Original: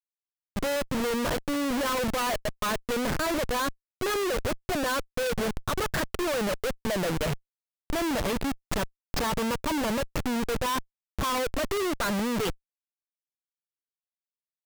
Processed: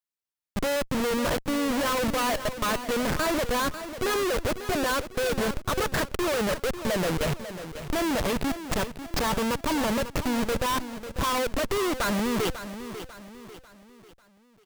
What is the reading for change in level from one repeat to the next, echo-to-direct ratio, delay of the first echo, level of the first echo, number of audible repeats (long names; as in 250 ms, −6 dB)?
−7.5 dB, −10.5 dB, 545 ms, −11.5 dB, 4